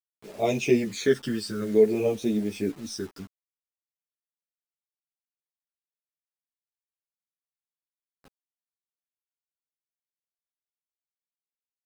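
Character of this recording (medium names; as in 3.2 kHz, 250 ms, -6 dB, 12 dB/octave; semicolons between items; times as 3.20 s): phasing stages 12, 0.55 Hz, lowest notch 700–1500 Hz; a quantiser's noise floor 8-bit, dither none; a shimmering, thickened sound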